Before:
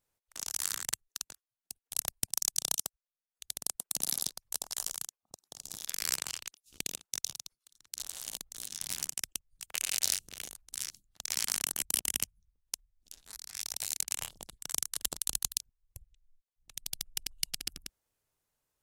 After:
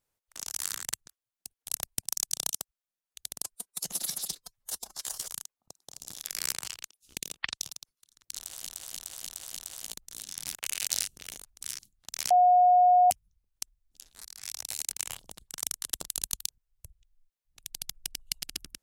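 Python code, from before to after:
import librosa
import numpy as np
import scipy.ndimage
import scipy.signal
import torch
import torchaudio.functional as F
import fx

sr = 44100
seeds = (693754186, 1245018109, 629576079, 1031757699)

y = fx.edit(x, sr, fx.cut(start_s=1.06, length_s=0.25),
    fx.stretch_span(start_s=3.69, length_s=1.23, factor=1.5),
    fx.tape_start(start_s=7.0, length_s=0.25),
    fx.repeat(start_s=8.01, length_s=0.3, count=5),
    fx.cut(start_s=8.99, length_s=0.68),
    fx.bleep(start_s=11.42, length_s=0.8, hz=722.0, db=-16.5), tone=tone)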